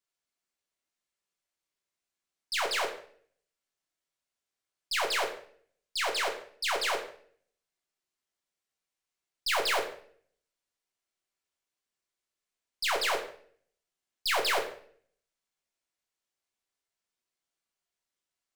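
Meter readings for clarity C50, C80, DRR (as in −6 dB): 8.5 dB, 12.0 dB, 0.5 dB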